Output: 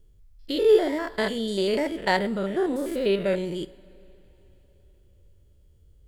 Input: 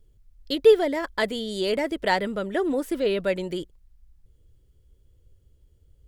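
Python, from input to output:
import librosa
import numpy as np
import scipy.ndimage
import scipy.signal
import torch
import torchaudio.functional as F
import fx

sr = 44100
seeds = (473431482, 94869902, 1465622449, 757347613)

y = fx.spec_steps(x, sr, hold_ms=100)
y = fx.rev_double_slope(y, sr, seeds[0], early_s=0.37, late_s=4.1, knee_db=-20, drr_db=13.5)
y = F.gain(torch.from_numpy(y), 2.5).numpy()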